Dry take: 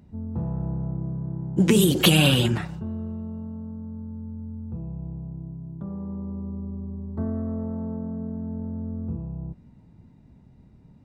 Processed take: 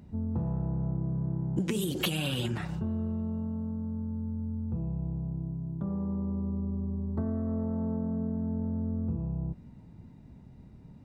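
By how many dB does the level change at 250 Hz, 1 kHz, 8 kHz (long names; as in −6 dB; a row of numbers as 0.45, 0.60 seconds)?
−5.0, −8.0, −13.0 decibels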